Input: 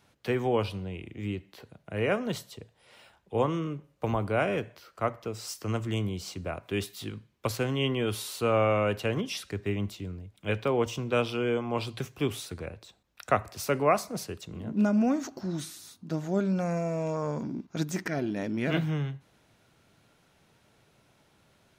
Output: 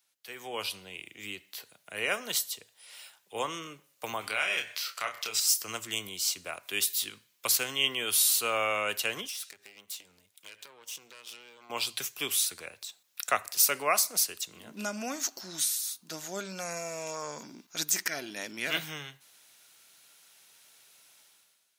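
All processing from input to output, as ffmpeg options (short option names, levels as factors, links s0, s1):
-filter_complex "[0:a]asettb=1/sr,asplit=3[s0][s1][s2];[s0]atrim=end=4.214[s3];[s1]atrim=start=4.21:end=5.4,asetpts=PTS-STARTPTS,afade=t=in:d=0.004:c=qsin,afade=t=out:st=1.186:d=0.004:c=qsin,equalizer=f=2900:t=o:w=2.9:g=11.5,acompressor=threshold=0.02:ratio=2:attack=3.2:release=140:knee=1:detection=peak,asplit=2[s4][s5];[s5]adelay=28,volume=0.531[s6];[s4][s6]amix=inputs=2:normalize=0,atrim=end_sample=52479[s7];[s2]atrim=start=5.396[s8];[s3][s7]acrossfade=d=0.004:c1=hsin:c2=qsin[s9];[s9][s8]acrossfade=d=0.004:c1=qsin:c2=hsin,asettb=1/sr,asplit=3[s10][s11][s12];[s10]atrim=end=9.274[s13];[s11]atrim=start=9.27:end=11.7,asetpts=PTS-STARTPTS,afade=t=in:d=0.004:c=qsin,afade=t=out:st=2.426:d=0.004:c=qsin,lowshelf=f=130:g=-8.5,acompressor=threshold=0.01:ratio=12:attack=3.2:release=140:knee=1:detection=peak,aeval=exprs='(tanh(112*val(0)+0.8)-tanh(0.8))/112':c=same[s14];[s12]atrim=start=11.696[s15];[s13][s14]acrossfade=d=0.004:c1=hsin:c2=qsin[s16];[s16][s15]acrossfade=d=0.004:c1=qsin:c2=hsin,aderivative,dynaudnorm=f=110:g=9:m=6.31,volume=0.841"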